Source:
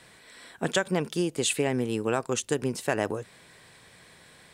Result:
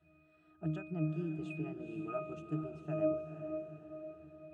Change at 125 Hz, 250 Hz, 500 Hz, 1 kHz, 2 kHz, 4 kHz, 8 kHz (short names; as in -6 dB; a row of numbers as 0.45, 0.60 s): -5.0 dB, -8.0 dB, -10.0 dB, -14.5 dB, -19.5 dB, under -30 dB, under -40 dB